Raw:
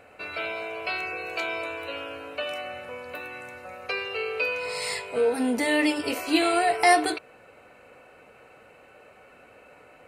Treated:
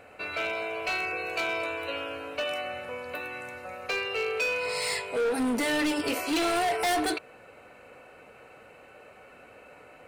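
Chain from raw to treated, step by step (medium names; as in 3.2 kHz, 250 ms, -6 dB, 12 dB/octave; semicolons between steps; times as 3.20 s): hard clipper -25 dBFS, distortion -6 dB; trim +1 dB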